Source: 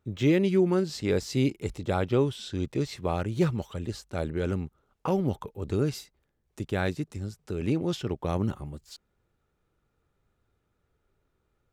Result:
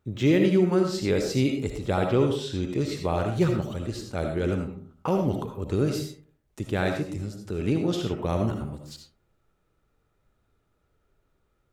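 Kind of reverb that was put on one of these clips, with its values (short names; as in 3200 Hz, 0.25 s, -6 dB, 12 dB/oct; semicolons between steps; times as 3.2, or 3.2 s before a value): digital reverb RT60 0.48 s, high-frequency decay 0.4×, pre-delay 35 ms, DRR 3.5 dB; gain +1.5 dB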